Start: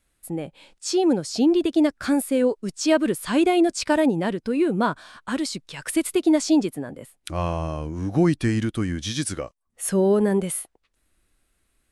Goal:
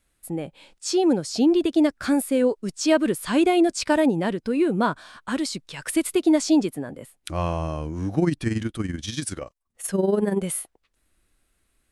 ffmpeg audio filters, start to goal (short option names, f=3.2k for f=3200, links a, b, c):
-filter_complex "[0:a]asettb=1/sr,asplit=3[a][b][c];[a]atrim=end=8.144[d];[b]atrim=start=8.14:end=10.43,asetpts=PTS-STARTPTS,afade=t=in:d=0.004:c=qsin,afade=t=out:st=2.286:d=0.004:c=qsin,tremolo=f=21:d=0.667[e];[c]atrim=start=10.426[f];[d][e]acrossfade=d=0.004:c1=hsin:c2=qsin[g];[g][f]acrossfade=d=0.004:c1=qsin:c2=hsin"